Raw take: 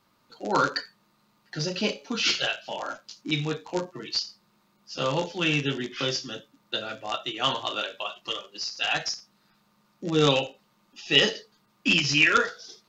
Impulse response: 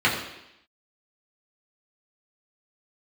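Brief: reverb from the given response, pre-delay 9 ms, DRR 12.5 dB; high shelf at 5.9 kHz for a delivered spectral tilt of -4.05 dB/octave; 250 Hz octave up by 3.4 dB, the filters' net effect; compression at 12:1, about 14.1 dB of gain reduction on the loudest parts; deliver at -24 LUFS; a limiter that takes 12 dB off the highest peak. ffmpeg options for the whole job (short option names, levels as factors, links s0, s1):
-filter_complex "[0:a]equalizer=f=250:t=o:g=4.5,highshelf=f=5900:g=-4.5,acompressor=threshold=0.0355:ratio=12,alimiter=level_in=1.78:limit=0.0631:level=0:latency=1,volume=0.562,asplit=2[s0][s1];[1:a]atrim=start_sample=2205,adelay=9[s2];[s1][s2]afir=irnorm=-1:irlink=0,volume=0.0299[s3];[s0][s3]amix=inputs=2:normalize=0,volume=5.62"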